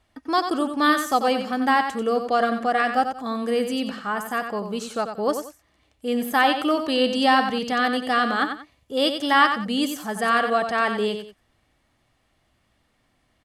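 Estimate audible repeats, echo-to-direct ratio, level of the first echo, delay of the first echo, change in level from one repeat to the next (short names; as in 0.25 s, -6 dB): 2, -7.5 dB, -8.0 dB, 91 ms, -11.0 dB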